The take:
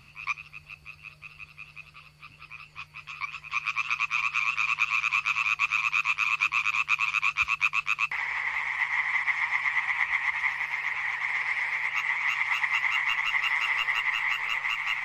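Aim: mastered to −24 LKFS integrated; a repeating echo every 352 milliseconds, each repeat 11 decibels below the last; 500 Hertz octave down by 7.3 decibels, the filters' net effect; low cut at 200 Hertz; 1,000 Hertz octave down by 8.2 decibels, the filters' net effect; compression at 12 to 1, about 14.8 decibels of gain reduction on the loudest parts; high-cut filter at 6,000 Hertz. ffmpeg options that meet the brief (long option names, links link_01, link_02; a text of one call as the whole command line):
ffmpeg -i in.wav -af "highpass=200,lowpass=6000,equalizer=frequency=500:width_type=o:gain=-6,equalizer=frequency=1000:width_type=o:gain=-9,acompressor=threshold=-38dB:ratio=12,aecho=1:1:352|704|1056:0.282|0.0789|0.0221,volume=16dB" out.wav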